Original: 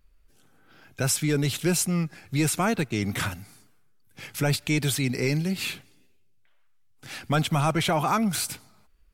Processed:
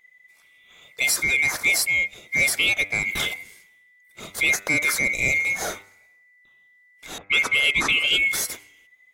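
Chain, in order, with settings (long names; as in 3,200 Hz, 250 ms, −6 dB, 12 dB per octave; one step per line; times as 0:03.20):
neighbouring bands swapped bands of 2,000 Hz
0:07.18–0:08.14: low-pass that shuts in the quiet parts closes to 840 Hz, open at −19 dBFS
hum removal 99.16 Hz, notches 26
level +3 dB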